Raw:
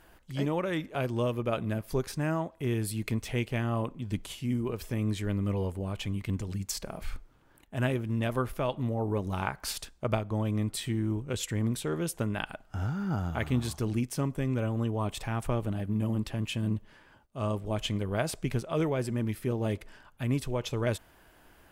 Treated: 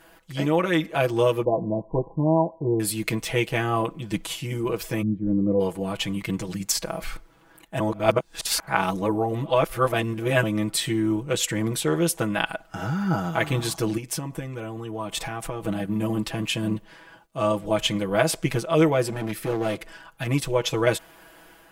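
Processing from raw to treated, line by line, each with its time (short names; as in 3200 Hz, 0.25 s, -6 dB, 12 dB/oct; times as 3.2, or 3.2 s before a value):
1.44–2.8 brick-wall FIR low-pass 1100 Hz
5.01–5.59 synth low-pass 170 Hz -> 510 Hz, resonance Q 1.7
7.8–10.43 reverse
13.97–15.65 compressor, threshold -33 dBFS
19.02–20.27 hard clip -29 dBFS
whole clip: low shelf 160 Hz -11.5 dB; comb 6.1 ms, depth 98%; AGC gain up to 3.5 dB; gain +4 dB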